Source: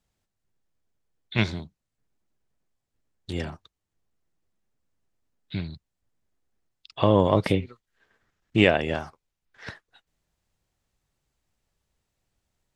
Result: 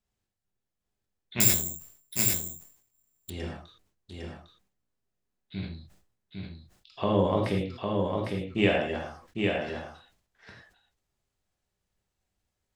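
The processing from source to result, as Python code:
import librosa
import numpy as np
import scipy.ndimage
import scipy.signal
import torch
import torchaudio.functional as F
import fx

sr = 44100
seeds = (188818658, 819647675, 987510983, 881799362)

y = x + 10.0 ** (-4.0 / 20.0) * np.pad(x, (int(804 * sr / 1000.0), 0))[:len(x)]
y = fx.rev_gated(y, sr, seeds[0], gate_ms=130, shape='flat', drr_db=0.0)
y = fx.resample_bad(y, sr, factor=6, down='none', up='zero_stuff', at=(1.4, 3.3))
y = fx.sustainer(y, sr, db_per_s=95.0)
y = y * 10.0 ** (-8.5 / 20.0)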